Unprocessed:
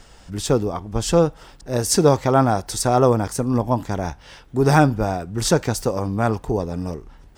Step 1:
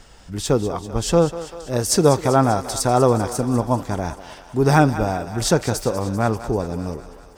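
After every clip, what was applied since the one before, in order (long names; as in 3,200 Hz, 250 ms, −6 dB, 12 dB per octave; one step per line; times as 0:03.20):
feedback echo with a high-pass in the loop 195 ms, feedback 68%, high-pass 380 Hz, level −12.5 dB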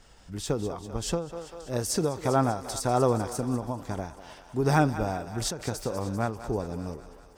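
every ending faded ahead of time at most 120 dB per second
level −7.5 dB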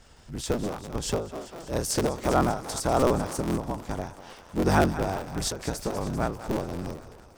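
sub-harmonics by changed cycles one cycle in 3, inverted
level +1 dB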